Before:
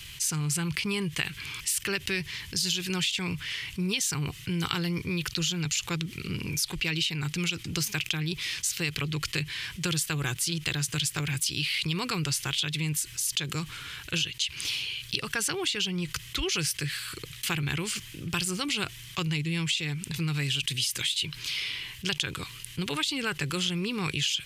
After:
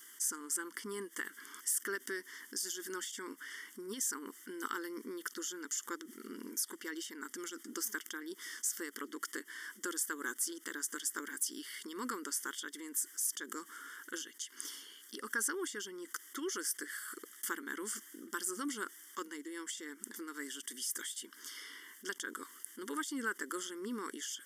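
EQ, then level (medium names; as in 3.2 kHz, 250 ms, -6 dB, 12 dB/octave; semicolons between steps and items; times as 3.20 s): brick-wall FIR high-pass 220 Hz; Butterworth band-stop 2.5 kHz, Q 1.5; static phaser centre 1.7 kHz, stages 4; -2.5 dB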